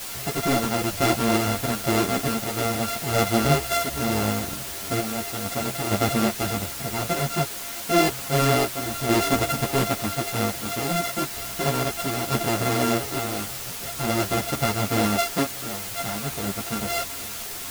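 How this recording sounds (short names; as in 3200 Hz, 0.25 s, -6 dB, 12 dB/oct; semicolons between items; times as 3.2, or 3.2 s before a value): a buzz of ramps at a fixed pitch in blocks of 64 samples; random-step tremolo 2.2 Hz, depth 65%; a quantiser's noise floor 6-bit, dither triangular; a shimmering, thickened sound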